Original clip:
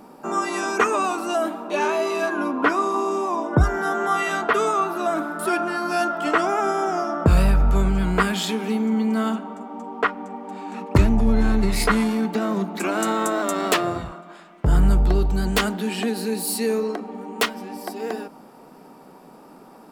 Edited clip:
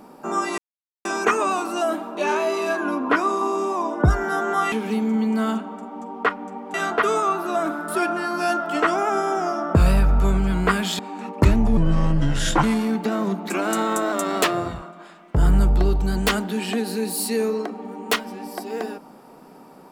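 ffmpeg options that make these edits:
-filter_complex "[0:a]asplit=7[a][b][c][d][e][f][g];[a]atrim=end=0.58,asetpts=PTS-STARTPTS,afade=t=out:st=0.576:d=0.004:c=hsin,apad=pad_dur=0.47[h];[b]atrim=start=0.58:end=4.252,asetpts=PTS-STARTPTS,afade=t=in:d=0.004:c=hsin[i];[c]atrim=start=8.498:end=10.522[j];[d]atrim=start=4.248:end=8.502[k];[e]atrim=start=10.518:end=11.304[l];[f]atrim=start=11.3:end=11.93,asetpts=PTS-STARTPTS,asetrate=32193,aresample=44100[m];[g]atrim=start=11.926[n];[h][i]concat=n=2:v=0:a=1[o];[o][j]acrossfade=d=0.004:c1=hsin:c2=hsin[p];[p][k]acrossfade=d=0.004:c1=hsin:c2=hsin[q];[q][l]acrossfade=d=0.004:c1=hsin:c2=hsin[r];[r][m]acrossfade=d=0.004:c1=hsin:c2=hsin[s];[s][n]acrossfade=d=0.004:c1=hsin:c2=hsin"

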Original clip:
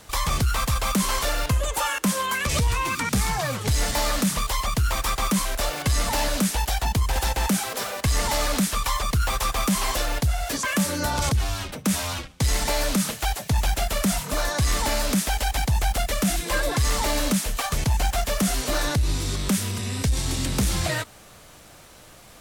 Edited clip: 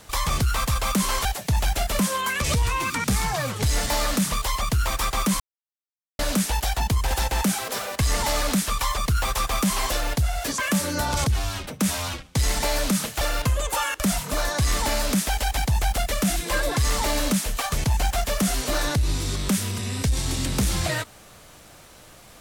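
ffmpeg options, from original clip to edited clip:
-filter_complex "[0:a]asplit=7[a][b][c][d][e][f][g];[a]atrim=end=1.252[h];[b]atrim=start=13.258:end=14.002[i];[c]atrim=start=2.038:end=5.45,asetpts=PTS-STARTPTS,afade=t=out:st=3.408:d=0.004:c=hsin[j];[d]atrim=start=5.45:end=6.24,asetpts=PTS-STARTPTS,volume=0[k];[e]atrim=start=6.24:end=13.262,asetpts=PTS-STARTPTS,afade=t=in:d=0.004:c=hsin[l];[f]atrim=start=1.248:end=2.042[m];[g]atrim=start=13.998[n];[h][i]acrossfade=d=0.004:c1=hsin:c2=hsin[o];[j][k][l]concat=n=3:v=0:a=1[p];[o][p]acrossfade=d=0.004:c1=hsin:c2=hsin[q];[q][m]acrossfade=d=0.004:c1=hsin:c2=hsin[r];[r][n]acrossfade=d=0.004:c1=hsin:c2=hsin"

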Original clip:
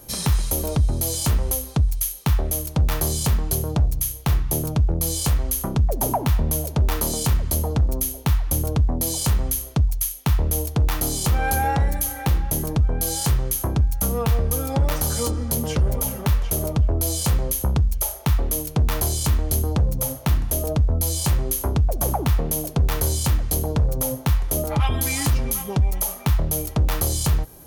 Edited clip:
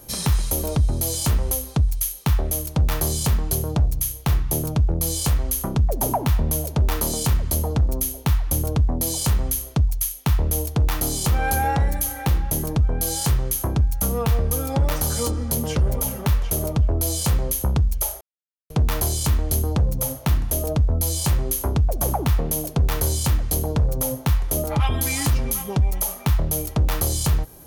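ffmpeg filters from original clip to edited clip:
-filter_complex "[0:a]asplit=3[a][b][c];[a]atrim=end=18.21,asetpts=PTS-STARTPTS,afade=t=out:st=18.206:d=0.004:c=hsin[d];[b]atrim=start=18.21:end=18.7,asetpts=PTS-STARTPTS,volume=0[e];[c]atrim=start=18.7,asetpts=PTS-STARTPTS,afade=t=in:d=0.004:c=hsin[f];[d][e][f]concat=n=3:v=0:a=1"

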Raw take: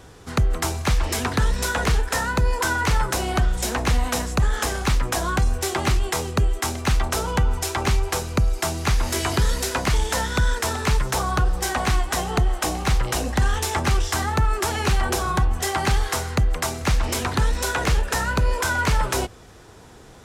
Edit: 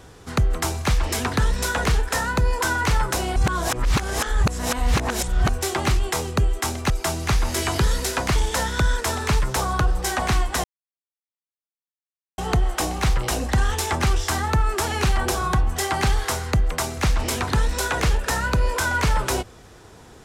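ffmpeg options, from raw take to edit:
-filter_complex "[0:a]asplit=5[a][b][c][d][e];[a]atrim=end=3.362[f];[b]atrim=start=3.358:end=5.492,asetpts=PTS-STARTPTS,areverse[g];[c]atrim=start=5.488:end=6.902[h];[d]atrim=start=8.478:end=12.22,asetpts=PTS-STARTPTS,afade=t=out:st=3.738:d=0.004:c=hsin,apad=pad_dur=1.74[i];[e]atrim=start=12.22,asetpts=PTS-STARTPTS,afade=t=in:d=0.004:c=hsin[j];[f][g]acrossfade=d=0.004:c1=hsin:c2=hsin[k];[k][h]acrossfade=d=0.004:c1=hsin:c2=hsin[l];[i][j]concat=n=2:v=0:a=1[m];[l][m]acrossfade=d=0.004:c1=hsin:c2=hsin"

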